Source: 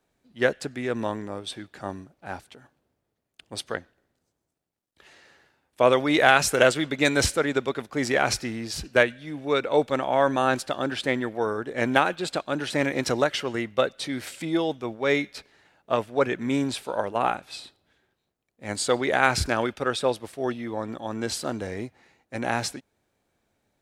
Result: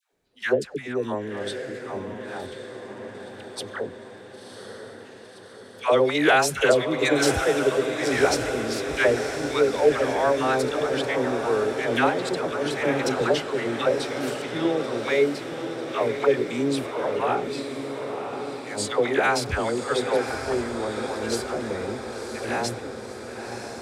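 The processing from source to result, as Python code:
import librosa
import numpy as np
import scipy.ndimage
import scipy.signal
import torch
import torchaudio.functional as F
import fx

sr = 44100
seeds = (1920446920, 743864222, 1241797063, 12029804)

p1 = fx.peak_eq(x, sr, hz=420.0, db=7.0, octaves=0.37)
p2 = fx.dispersion(p1, sr, late='lows', ms=124.0, hz=760.0)
p3 = p2 + fx.echo_diffused(p2, sr, ms=1022, feedback_pct=64, wet_db=-7.5, dry=0)
y = p3 * librosa.db_to_amplitude(-1.5)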